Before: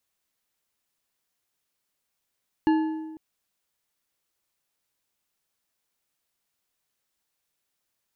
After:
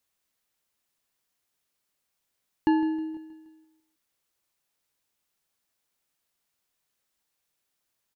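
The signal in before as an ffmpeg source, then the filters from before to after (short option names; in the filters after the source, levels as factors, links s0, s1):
-f lavfi -i "aevalsrc='0.158*pow(10,-3*t/1.28)*sin(2*PI*316*t)+0.0596*pow(10,-3*t/0.944)*sin(2*PI*871.2*t)+0.0224*pow(10,-3*t/0.772)*sin(2*PI*1707.7*t)+0.00841*pow(10,-3*t/0.664)*sin(2*PI*2822.8*t)+0.00316*pow(10,-3*t/0.588)*sin(2*PI*4215.4*t)':d=0.5:s=44100"
-af "aecho=1:1:158|316|474|632|790:0.15|0.0763|0.0389|0.0198|0.0101"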